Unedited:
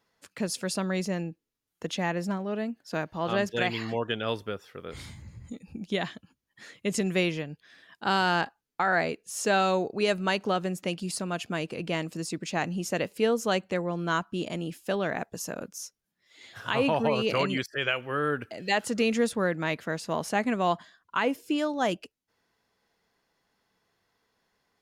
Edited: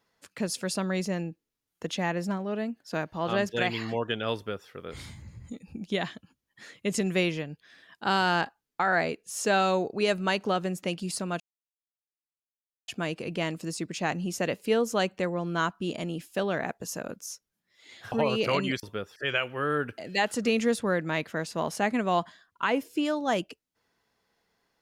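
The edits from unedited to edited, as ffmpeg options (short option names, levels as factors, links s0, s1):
-filter_complex "[0:a]asplit=5[s0][s1][s2][s3][s4];[s0]atrim=end=11.4,asetpts=PTS-STARTPTS,afade=t=out:st=11.396:d=0.004:c=hsin,apad=pad_dur=1.48[s5];[s1]atrim=start=11.4:end=16.642,asetpts=PTS-STARTPTS,afade=t=in:d=0.004:c=hsin[s6];[s2]atrim=start=16.978:end=17.692[s7];[s3]atrim=start=4.358:end=4.692[s8];[s4]atrim=start=17.688[s9];[s5][s6]concat=n=2:v=0:a=1[s10];[s10][s7]acrossfade=d=0.004:c1=hsin:c2=hsin[s11];[s11][s8]acrossfade=d=0.004:c1=hsin:c2=hsin[s12];[s12][s9]acrossfade=d=0.004:c1=hsin:c2=hsin"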